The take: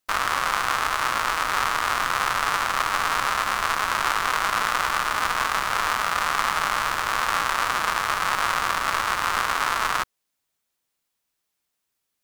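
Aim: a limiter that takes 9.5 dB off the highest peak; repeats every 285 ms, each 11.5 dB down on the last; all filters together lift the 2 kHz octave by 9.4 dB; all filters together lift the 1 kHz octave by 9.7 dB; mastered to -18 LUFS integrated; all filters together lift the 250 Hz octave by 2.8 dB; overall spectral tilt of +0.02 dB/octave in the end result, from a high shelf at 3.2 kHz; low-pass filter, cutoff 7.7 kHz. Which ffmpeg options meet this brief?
-af "lowpass=7700,equalizer=f=250:t=o:g=3,equalizer=f=1000:t=o:g=8.5,equalizer=f=2000:t=o:g=6.5,highshelf=f=3200:g=8,alimiter=limit=0.447:level=0:latency=1,aecho=1:1:285|570|855:0.266|0.0718|0.0194"

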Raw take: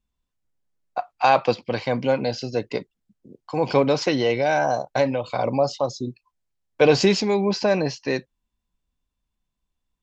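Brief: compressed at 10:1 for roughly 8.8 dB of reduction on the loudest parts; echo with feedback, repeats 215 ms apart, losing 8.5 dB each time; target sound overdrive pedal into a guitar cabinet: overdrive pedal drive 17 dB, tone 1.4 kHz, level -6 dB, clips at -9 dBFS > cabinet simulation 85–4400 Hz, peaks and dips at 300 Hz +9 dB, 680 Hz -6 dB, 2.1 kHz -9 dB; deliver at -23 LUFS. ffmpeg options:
-filter_complex "[0:a]acompressor=threshold=0.1:ratio=10,aecho=1:1:215|430|645|860:0.376|0.143|0.0543|0.0206,asplit=2[s0][s1];[s1]highpass=f=720:p=1,volume=7.08,asoftclip=type=tanh:threshold=0.355[s2];[s0][s2]amix=inputs=2:normalize=0,lowpass=f=1400:p=1,volume=0.501,highpass=85,equalizer=f=300:t=q:w=4:g=9,equalizer=f=680:t=q:w=4:g=-6,equalizer=f=2100:t=q:w=4:g=-9,lowpass=f=4400:w=0.5412,lowpass=f=4400:w=1.3066"

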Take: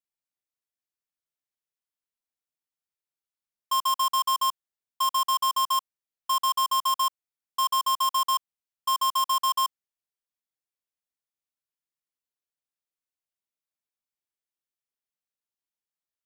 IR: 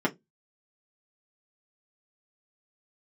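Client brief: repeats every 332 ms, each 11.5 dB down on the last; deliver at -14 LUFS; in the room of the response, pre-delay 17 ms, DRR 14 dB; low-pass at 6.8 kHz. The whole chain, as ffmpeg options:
-filter_complex "[0:a]lowpass=6800,aecho=1:1:332|664|996:0.266|0.0718|0.0194,asplit=2[s0][s1];[1:a]atrim=start_sample=2205,adelay=17[s2];[s1][s2]afir=irnorm=-1:irlink=0,volume=0.0562[s3];[s0][s3]amix=inputs=2:normalize=0,volume=3.55"

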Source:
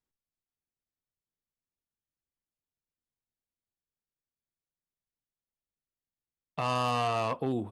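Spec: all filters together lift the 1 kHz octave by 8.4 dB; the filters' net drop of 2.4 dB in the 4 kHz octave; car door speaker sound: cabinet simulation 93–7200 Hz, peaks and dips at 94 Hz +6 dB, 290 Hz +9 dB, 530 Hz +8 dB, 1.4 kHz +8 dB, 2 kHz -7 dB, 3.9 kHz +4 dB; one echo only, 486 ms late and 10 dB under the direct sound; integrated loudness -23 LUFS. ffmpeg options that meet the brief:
-af "highpass=93,equalizer=f=94:t=q:w=4:g=6,equalizer=f=290:t=q:w=4:g=9,equalizer=f=530:t=q:w=4:g=8,equalizer=f=1400:t=q:w=4:g=8,equalizer=f=2000:t=q:w=4:g=-7,equalizer=f=3900:t=q:w=4:g=4,lowpass=f=7200:w=0.5412,lowpass=f=7200:w=1.3066,equalizer=f=1000:t=o:g=8.5,equalizer=f=4000:t=o:g=-5.5,aecho=1:1:486:0.316"

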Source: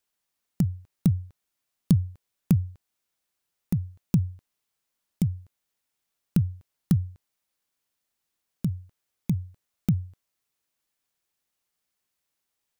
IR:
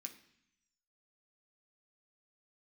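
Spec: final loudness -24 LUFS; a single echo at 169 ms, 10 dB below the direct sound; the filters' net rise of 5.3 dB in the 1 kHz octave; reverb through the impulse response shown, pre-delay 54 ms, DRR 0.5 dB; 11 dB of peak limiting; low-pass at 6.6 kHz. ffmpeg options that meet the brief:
-filter_complex "[0:a]lowpass=6600,equalizer=f=1000:t=o:g=7,alimiter=limit=0.112:level=0:latency=1,aecho=1:1:169:0.316,asplit=2[s0][s1];[1:a]atrim=start_sample=2205,adelay=54[s2];[s1][s2]afir=irnorm=-1:irlink=0,volume=1.78[s3];[s0][s3]amix=inputs=2:normalize=0,volume=2.11"

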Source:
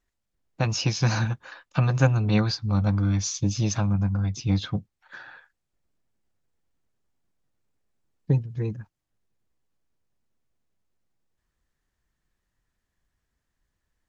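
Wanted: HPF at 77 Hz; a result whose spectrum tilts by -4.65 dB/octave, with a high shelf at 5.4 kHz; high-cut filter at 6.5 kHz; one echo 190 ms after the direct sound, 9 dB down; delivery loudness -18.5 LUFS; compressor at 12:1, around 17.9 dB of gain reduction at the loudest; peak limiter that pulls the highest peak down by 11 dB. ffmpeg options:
-af "highpass=77,lowpass=6500,highshelf=f=5400:g=5.5,acompressor=threshold=0.0224:ratio=12,alimiter=level_in=2:limit=0.0631:level=0:latency=1,volume=0.501,aecho=1:1:190:0.355,volume=10.6"

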